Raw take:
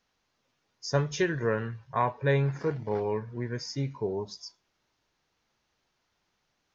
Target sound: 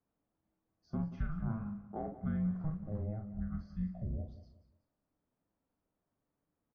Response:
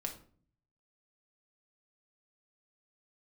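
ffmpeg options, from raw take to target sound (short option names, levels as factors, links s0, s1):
-filter_complex "[0:a]lowpass=1000,asplit=2[s0][s1];[s1]adelay=42,volume=0.473[s2];[s0][s2]amix=inputs=2:normalize=0,alimiter=limit=0.0891:level=0:latency=1:release=281,afreqshift=-320,asplit=2[s3][s4];[s4]aecho=0:1:182|364|546:0.2|0.0658|0.0217[s5];[s3][s5]amix=inputs=2:normalize=0,volume=0.501"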